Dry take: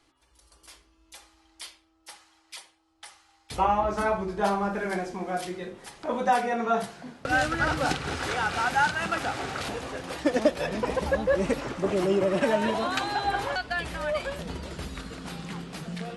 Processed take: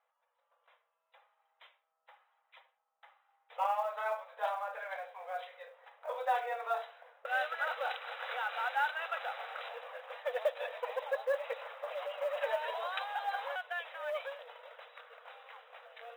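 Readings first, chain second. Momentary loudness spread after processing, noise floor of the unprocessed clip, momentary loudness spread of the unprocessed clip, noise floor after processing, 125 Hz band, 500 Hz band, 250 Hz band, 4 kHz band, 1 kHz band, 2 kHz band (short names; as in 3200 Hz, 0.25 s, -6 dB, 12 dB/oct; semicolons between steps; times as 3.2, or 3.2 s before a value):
18 LU, -66 dBFS, 14 LU, -82 dBFS, under -40 dB, -10.0 dB, under -40 dB, -10.5 dB, -8.5 dB, -8.5 dB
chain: low-pass opened by the level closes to 1500 Hz, open at -21.5 dBFS; brick-wall FIR band-pass 460–4000 Hz; short-mantissa float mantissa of 4-bit; gain -8.5 dB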